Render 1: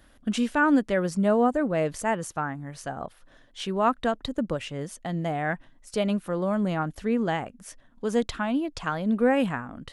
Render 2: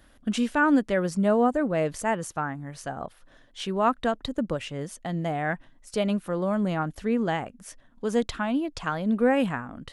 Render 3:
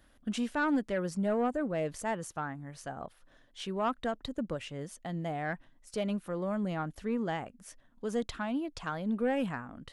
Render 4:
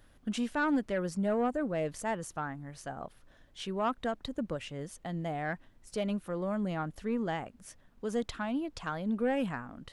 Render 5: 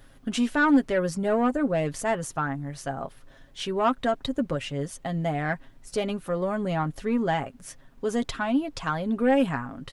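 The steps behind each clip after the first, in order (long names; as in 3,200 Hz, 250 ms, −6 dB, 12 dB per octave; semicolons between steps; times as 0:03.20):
no processing that can be heard
soft clipping −15 dBFS, distortion −19 dB; level −6.5 dB
background noise brown −62 dBFS
comb filter 7.4 ms, depth 50%; level +7 dB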